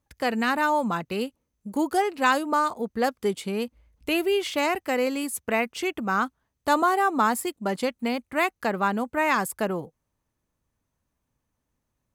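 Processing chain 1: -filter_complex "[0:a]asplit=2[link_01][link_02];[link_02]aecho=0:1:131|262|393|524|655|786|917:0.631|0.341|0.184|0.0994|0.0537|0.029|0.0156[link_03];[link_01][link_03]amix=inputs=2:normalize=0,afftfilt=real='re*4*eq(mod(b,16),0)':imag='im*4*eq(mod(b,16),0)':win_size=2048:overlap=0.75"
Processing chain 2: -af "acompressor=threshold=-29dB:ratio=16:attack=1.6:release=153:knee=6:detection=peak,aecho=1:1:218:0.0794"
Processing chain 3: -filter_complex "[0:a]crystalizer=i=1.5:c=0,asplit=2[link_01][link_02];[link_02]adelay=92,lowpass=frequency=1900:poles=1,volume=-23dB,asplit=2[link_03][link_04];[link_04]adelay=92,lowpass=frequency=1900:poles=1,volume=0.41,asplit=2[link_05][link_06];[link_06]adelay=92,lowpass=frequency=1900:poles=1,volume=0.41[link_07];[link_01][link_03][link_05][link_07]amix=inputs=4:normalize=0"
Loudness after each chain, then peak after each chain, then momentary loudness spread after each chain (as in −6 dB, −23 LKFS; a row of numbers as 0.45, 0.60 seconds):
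−26.5, −36.0, −24.5 LKFS; −7.0, −23.5, −7.5 dBFS; 15, 5, 9 LU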